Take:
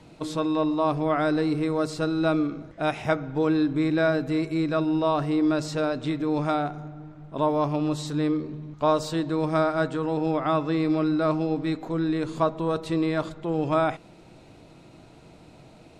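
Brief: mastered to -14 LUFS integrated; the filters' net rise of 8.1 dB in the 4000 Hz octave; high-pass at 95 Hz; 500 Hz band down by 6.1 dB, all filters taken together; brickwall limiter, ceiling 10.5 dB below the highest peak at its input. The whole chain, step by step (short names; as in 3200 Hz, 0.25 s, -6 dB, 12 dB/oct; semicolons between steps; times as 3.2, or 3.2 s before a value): HPF 95 Hz; bell 500 Hz -8.5 dB; bell 4000 Hz +9 dB; gain +16 dB; limiter -4.5 dBFS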